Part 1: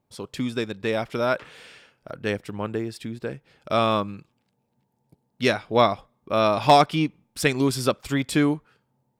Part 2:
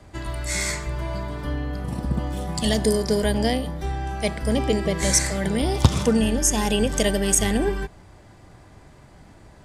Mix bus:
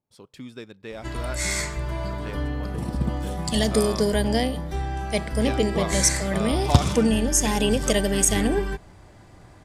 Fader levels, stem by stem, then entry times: −12.0, −0.5 decibels; 0.00, 0.90 seconds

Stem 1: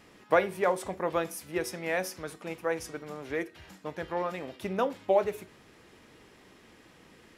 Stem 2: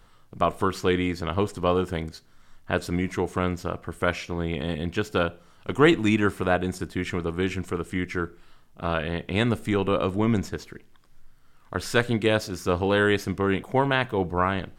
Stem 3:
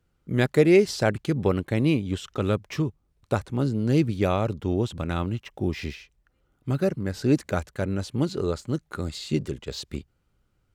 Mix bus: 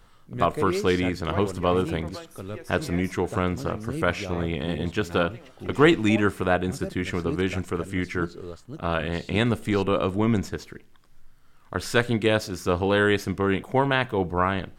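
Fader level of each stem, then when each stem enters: −11.0, +0.5, −11.5 decibels; 1.00, 0.00, 0.00 seconds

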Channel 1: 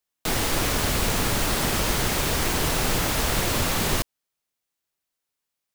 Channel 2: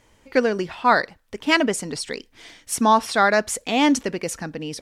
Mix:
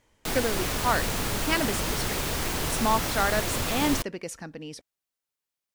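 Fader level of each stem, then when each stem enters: −5.0, −8.5 decibels; 0.00, 0.00 seconds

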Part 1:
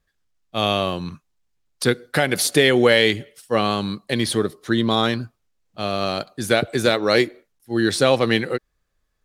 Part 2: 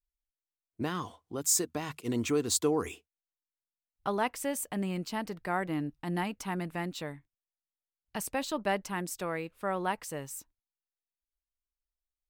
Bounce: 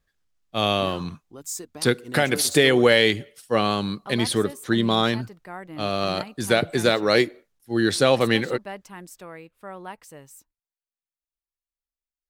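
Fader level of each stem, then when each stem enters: −1.5, −6.0 decibels; 0.00, 0.00 seconds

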